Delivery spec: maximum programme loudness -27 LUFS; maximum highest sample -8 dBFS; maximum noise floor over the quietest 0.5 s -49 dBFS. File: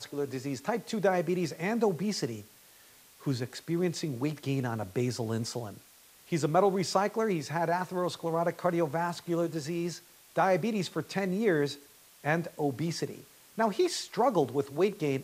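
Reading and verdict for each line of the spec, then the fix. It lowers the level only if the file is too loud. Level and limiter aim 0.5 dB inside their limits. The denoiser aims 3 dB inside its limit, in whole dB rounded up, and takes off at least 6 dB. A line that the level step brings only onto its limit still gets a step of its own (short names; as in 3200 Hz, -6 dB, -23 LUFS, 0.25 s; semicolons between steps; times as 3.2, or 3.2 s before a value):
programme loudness -31.0 LUFS: OK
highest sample -12.0 dBFS: OK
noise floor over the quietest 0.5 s -57 dBFS: OK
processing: none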